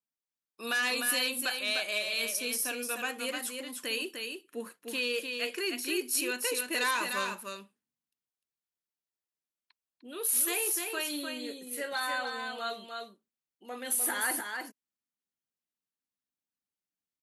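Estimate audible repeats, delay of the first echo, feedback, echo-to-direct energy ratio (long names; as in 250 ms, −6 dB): 1, 301 ms, repeats not evenly spaced, −5.0 dB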